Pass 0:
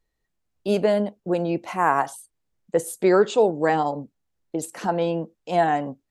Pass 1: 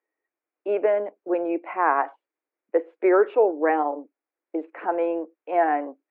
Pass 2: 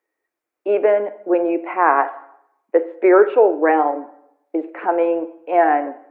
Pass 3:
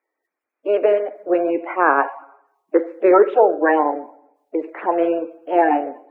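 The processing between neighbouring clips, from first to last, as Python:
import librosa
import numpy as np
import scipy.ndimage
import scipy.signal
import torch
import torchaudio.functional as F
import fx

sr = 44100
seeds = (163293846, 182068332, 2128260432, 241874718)

y1 = scipy.signal.sosfilt(scipy.signal.cheby1(4, 1.0, [300.0, 2400.0], 'bandpass', fs=sr, output='sos'), x)
y2 = fx.rev_plate(y1, sr, seeds[0], rt60_s=0.76, hf_ratio=0.8, predelay_ms=0, drr_db=11.5)
y2 = y2 * librosa.db_to_amplitude(6.0)
y3 = fx.spec_quant(y2, sr, step_db=30)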